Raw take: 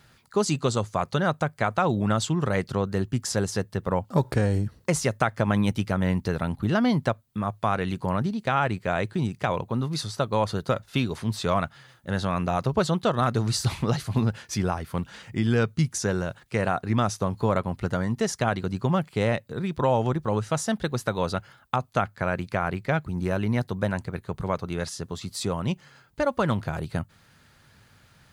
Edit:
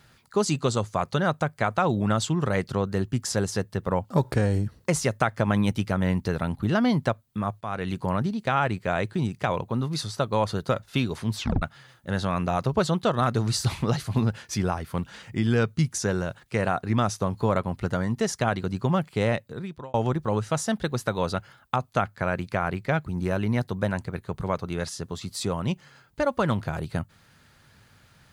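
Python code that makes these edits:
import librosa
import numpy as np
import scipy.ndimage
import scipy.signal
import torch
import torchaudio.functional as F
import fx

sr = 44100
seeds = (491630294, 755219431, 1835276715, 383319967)

y = fx.edit(x, sr, fx.fade_in_from(start_s=7.61, length_s=0.33, floor_db=-12.5),
    fx.tape_stop(start_s=11.37, length_s=0.25),
    fx.fade_out_span(start_s=19.36, length_s=0.58), tone=tone)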